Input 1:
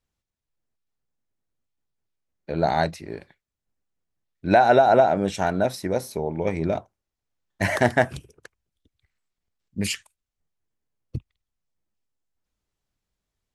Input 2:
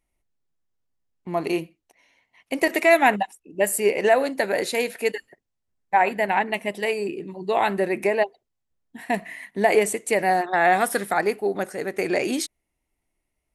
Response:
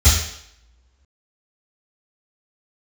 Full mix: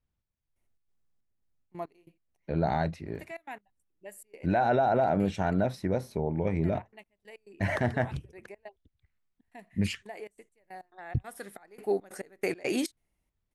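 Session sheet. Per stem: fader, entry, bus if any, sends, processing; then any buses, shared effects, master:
−5.0 dB, 0.00 s, no send, bass and treble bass +7 dB, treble −10 dB
−3.5 dB, 0.45 s, no send, gate pattern ".xx.xxx..xx.x..x" 139 BPM −24 dB; automatic ducking −21 dB, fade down 1.15 s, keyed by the first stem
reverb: not used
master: brickwall limiter −17 dBFS, peak gain reduction 8.5 dB

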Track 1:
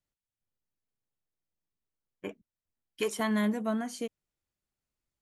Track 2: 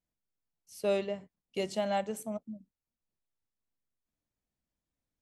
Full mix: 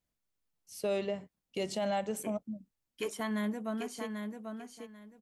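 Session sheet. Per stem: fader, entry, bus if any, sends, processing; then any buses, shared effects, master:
−5.5 dB, 0.00 s, no send, echo send −6 dB, no processing
+2.5 dB, 0.00 s, no send, no echo send, no processing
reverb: not used
echo: repeating echo 791 ms, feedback 21%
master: brickwall limiter −24.5 dBFS, peak gain reduction 7 dB

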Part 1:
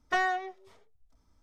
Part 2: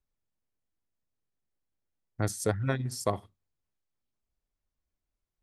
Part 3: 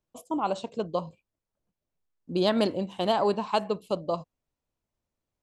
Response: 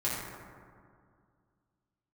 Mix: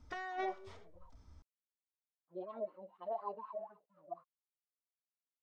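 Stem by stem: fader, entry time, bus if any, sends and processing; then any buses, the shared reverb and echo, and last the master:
−0.5 dB, 0.00 s, no send, brickwall limiter −22 dBFS, peak gain reduction 7 dB; parametric band 78 Hz +9.5 dB 1 octave; hum removal 163.8 Hz, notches 14
muted
−5.5 dB, 0.00 s, no send, harmonic-percussive split with one part muted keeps harmonic; dead-zone distortion −58 dBFS; LFO wah 4.1 Hz 560–1,300 Hz, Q 7.9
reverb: not used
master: low-pass filter 6,500 Hz; compressor whose output falls as the input rises −39 dBFS, ratio −1

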